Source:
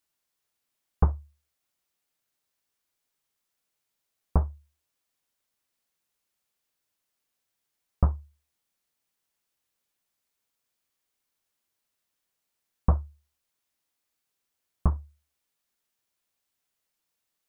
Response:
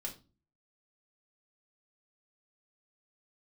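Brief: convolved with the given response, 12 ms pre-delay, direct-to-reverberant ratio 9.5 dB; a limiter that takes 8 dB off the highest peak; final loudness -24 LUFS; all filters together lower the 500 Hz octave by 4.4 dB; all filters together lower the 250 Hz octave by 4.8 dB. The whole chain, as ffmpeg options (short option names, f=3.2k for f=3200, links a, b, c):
-filter_complex "[0:a]equalizer=f=250:t=o:g=-8,equalizer=f=500:t=o:g=-3.5,alimiter=limit=-17dB:level=0:latency=1,asplit=2[a][b];[1:a]atrim=start_sample=2205,adelay=12[c];[b][c]afir=irnorm=-1:irlink=0,volume=-8.5dB[d];[a][d]amix=inputs=2:normalize=0,volume=8.5dB"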